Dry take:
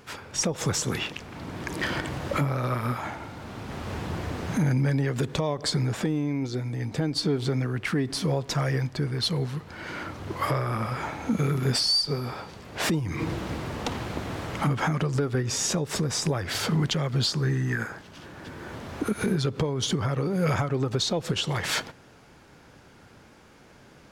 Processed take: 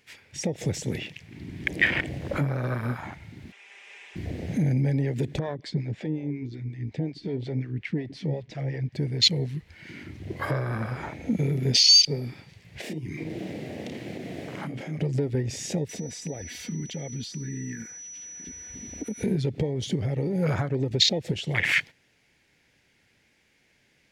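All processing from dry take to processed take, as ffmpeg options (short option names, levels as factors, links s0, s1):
-filter_complex "[0:a]asettb=1/sr,asplit=3[s0][s1][s2];[s0]atrim=end=3.524[s3];[s1]atrim=start=3.52:end=4.16,asetpts=PTS-STARTPTS,afade=t=in:d=0.004:c=qsin,afade=t=out:st=0.636:d=0.004:c=qsin,highpass=f=500:w=0.5412,highpass=f=500:w=1.3066,equalizer=f=610:t=q:w=4:g=-8,equalizer=f=2500:t=q:w=4:g=6,equalizer=f=4400:t=q:w=4:g=-10,lowpass=f=8700:w=0.5412,lowpass=f=8700:w=1.3066,aecho=1:1:5:0.66,atrim=end_sample=28224[s4];[s2]atrim=start=4.156[s5];[s3][s4]acrossfade=d=0.004:c1=hsin:c2=qsin[s6];[s6][s5]acrossfade=d=0.004:c1=qsin:c2=hsin,asettb=1/sr,asplit=3[s7][s8][s9];[s7]atrim=end=5.394[s10];[s8]atrim=start=5.39:end=8.93,asetpts=PTS-STARTPTS,afade=t=in:d=0.004:c=qsin,afade=t=out:st=3.536:d=0.004:c=qsin,lowpass=4500,acrossover=split=490[s11][s12];[s11]aeval=exprs='val(0)*(1-0.7/2+0.7/2*cos(2*PI*5.5*n/s))':c=same[s13];[s12]aeval=exprs='val(0)*(1-0.7/2-0.7/2*cos(2*PI*5.5*n/s))':c=same[s14];[s13][s14]amix=inputs=2:normalize=0[s15];[s9]atrim=start=8.926[s16];[s10][s15]acrossfade=d=0.004:c1=hsin:c2=qsin[s17];[s17][s16]acrossfade=d=0.004:c1=qsin:c2=hsin,asettb=1/sr,asplit=3[s18][s19][s20];[s18]atrim=end=12.814[s21];[s19]atrim=start=12.81:end=14.99,asetpts=PTS-STARTPTS,afade=t=in:d=0.004:c=qsin,afade=t=out:st=2.176:d=0.004:c=qsin,highpass=160,acompressor=threshold=0.0355:ratio=10:attack=3.2:release=140:knee=1:detection=peak,asplit=2[s22][s23];[s23]adelay=32,volume=0.631[s24];[s22][s24]amix=inputs=2:normalize=0,atrim=end_sample=96138[s25];[s20]atrim=start=14.986[s26];[s21][s25]acrossfade=d=0.004:c1=hsin:c2=qsin[s27];[s27][s26]acrossfade=d=0.004:c1=qsin:c2=hsin,asettb=1/sr,asplit=3[s28][s29][s30];[s28]atrim=end=15.894[s31];[s29]atrim=start=15.89:end=19.23,asetpts=PTS-STARTPTS,afade=t=in:d=0.004:c=qsin,afade=t=out:st=3.336:d=0.004:c=qsin,aeval=exprs='val(0)+0.0224*sin(2*PI*5900*n/s)':c=same,aecho=1:1:4.1:0.48,atrim=end_sample=147294,acompressor=threshold=0.0316:ratio=2.5:attack=3.2:release=140:knee=1:detection=peak[s32];[s30]atrim=start=19.226[s33];[s31][s32]acrossfade=d=0.004:c1=hsin:c2=qsin[s34];[s34][s33]acrossfade=d=0.004:c1=qsin:c2=hsin,afwtdn=0.0398,highshelf=f=1600:t=q:w=3:g=7.5"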